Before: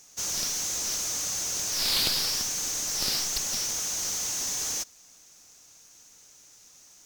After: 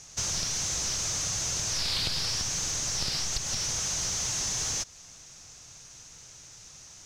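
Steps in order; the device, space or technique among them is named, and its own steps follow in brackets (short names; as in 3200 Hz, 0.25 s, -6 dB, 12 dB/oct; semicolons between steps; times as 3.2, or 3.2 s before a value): jukebox (LPF 7000 Hz 12 dB/oct; resonant low shelf 180 Hz +8 dB, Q 1.5; compressor 4:1, threshold -36 dBFS, peak gain reduction 12 dB); gain +7 dB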